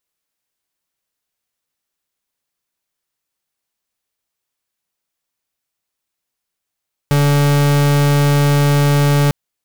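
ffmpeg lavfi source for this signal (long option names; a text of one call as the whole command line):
ffmpeg -f lavfi -i "aevalsrc='0.237*(2*lt(mod(144*t,1),0.42)-1)':duration=2.2:sample_rate=44100" out.wav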